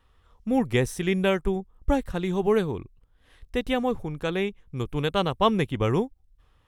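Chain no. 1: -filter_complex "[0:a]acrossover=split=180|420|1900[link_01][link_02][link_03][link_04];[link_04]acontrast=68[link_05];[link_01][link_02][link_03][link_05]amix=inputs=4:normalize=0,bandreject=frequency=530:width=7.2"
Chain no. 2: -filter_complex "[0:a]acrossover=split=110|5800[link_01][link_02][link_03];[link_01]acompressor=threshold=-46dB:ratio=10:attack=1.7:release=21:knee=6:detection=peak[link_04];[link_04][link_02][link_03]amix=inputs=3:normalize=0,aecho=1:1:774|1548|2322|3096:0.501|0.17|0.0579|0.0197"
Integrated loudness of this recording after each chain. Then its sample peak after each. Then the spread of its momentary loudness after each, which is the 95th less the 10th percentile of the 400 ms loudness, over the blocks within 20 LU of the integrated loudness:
−26.0, −26.0 LKFS; −5.5, −6.5 dBFS; 9, 7 LU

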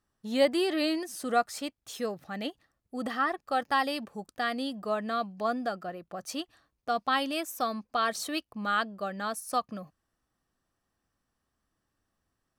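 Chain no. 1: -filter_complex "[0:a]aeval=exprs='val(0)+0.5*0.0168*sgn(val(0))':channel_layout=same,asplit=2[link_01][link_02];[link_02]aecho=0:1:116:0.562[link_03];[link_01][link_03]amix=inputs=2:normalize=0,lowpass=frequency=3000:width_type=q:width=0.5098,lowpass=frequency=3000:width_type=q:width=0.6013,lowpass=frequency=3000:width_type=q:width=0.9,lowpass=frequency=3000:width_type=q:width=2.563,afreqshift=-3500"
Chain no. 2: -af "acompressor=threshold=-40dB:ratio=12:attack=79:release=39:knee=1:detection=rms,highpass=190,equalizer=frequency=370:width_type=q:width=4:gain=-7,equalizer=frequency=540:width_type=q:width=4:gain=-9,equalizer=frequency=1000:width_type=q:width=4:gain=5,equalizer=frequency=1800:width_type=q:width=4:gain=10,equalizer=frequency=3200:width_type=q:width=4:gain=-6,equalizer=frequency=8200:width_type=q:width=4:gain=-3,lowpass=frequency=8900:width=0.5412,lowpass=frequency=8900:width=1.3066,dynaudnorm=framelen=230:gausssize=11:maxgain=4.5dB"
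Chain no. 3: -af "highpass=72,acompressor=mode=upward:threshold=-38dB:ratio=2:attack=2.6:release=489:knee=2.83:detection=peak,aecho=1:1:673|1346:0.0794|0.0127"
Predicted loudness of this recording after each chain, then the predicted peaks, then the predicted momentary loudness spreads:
−26.0, −35.0, −31.0 LKFS; −12.0, −16.0, −13.0 dBFS; 16, 9, 11 LU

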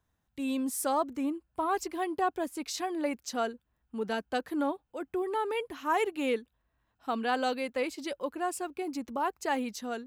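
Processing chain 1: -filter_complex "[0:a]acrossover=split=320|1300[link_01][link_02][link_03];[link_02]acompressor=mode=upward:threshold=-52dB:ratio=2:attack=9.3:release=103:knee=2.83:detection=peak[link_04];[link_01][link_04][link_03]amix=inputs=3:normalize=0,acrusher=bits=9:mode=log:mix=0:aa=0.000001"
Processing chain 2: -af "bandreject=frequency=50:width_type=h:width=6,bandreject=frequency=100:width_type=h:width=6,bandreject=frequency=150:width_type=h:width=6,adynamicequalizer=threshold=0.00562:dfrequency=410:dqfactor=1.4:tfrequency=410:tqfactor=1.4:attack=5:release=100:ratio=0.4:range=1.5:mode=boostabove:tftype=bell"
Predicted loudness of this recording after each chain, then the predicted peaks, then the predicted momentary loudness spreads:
−32.5, −31.5 LKFS; −16.5, −17.0 dBFS; 7, 6 LU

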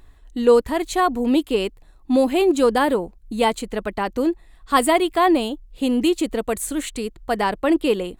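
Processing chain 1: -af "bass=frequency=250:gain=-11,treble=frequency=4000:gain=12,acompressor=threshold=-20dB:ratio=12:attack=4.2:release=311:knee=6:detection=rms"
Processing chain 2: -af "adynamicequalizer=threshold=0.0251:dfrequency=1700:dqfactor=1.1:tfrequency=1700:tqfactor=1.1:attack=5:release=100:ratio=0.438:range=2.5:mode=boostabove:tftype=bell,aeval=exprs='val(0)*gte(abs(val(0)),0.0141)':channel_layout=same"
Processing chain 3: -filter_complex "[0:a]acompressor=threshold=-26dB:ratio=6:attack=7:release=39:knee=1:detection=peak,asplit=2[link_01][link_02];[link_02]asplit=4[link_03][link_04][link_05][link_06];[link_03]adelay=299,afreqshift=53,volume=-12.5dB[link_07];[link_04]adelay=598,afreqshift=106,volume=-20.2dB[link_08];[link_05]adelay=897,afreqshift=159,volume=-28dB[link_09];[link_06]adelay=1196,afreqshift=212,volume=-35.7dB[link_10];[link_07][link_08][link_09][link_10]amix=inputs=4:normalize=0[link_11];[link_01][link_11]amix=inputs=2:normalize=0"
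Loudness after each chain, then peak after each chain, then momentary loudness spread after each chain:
−28.0, −20.0, −28.5 LKFS; −11.5, −3.0, −14.5 dBFS; 6, 10, 5 LU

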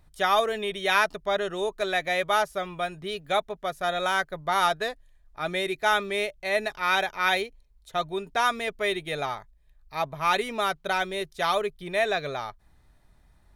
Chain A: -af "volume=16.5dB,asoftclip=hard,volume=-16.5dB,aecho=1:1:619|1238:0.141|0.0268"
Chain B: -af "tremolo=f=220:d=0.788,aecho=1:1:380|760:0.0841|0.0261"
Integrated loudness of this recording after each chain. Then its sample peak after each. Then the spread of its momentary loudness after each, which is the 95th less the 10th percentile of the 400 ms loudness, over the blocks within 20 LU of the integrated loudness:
−27.5, −30.5 LKFS; −15.5, −9.5 dBFS; 10, 9 LU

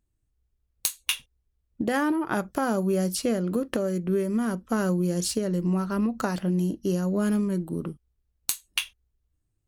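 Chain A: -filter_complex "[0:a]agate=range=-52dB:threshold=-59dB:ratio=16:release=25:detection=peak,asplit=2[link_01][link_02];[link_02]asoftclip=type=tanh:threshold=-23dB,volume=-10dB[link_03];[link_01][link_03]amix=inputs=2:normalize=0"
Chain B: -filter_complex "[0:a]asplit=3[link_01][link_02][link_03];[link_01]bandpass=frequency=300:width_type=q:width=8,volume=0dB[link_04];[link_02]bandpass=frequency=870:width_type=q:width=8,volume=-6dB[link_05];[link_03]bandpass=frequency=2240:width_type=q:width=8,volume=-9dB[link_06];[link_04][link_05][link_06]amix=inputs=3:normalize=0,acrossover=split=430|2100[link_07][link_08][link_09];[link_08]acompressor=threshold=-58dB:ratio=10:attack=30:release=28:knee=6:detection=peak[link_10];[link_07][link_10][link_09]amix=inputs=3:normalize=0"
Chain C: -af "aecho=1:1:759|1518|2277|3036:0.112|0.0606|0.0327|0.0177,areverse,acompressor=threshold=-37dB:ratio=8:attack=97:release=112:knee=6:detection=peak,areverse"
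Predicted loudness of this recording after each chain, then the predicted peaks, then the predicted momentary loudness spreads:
−25.5, −40.0, −35.5 LKFS; −7.5, −21.0, −14.5 dBFS; 6, 16, 7 LU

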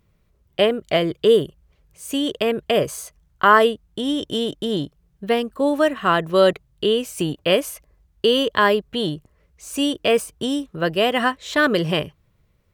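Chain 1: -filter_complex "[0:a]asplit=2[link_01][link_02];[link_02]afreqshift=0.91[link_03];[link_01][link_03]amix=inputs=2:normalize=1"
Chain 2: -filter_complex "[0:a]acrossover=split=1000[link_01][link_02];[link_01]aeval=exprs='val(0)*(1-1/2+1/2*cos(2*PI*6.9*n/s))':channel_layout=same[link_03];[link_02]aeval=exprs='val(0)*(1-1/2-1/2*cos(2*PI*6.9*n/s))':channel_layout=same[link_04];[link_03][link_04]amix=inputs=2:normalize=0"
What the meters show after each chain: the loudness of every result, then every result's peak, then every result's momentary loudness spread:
−23.5, −25.0 LKFS; −5.5, −5.0 dBFS; 14, 15 LU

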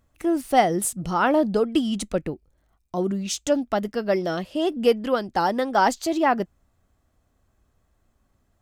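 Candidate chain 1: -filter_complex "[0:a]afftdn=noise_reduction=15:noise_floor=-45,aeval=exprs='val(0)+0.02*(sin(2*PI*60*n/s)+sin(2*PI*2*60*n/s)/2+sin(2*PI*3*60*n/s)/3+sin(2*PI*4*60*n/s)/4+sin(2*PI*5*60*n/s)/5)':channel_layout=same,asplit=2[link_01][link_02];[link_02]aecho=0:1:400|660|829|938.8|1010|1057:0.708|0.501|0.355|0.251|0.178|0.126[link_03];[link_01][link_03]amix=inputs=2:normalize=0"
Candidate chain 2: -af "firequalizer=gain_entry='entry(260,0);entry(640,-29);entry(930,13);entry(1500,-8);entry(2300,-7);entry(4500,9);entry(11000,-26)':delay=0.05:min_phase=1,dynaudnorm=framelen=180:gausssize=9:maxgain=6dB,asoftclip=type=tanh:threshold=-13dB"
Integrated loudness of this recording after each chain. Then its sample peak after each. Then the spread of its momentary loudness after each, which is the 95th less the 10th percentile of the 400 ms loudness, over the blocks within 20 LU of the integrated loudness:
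−21.0, −23.5 LKFS; −4.0, −13.0 dBFS; 16, 9 LU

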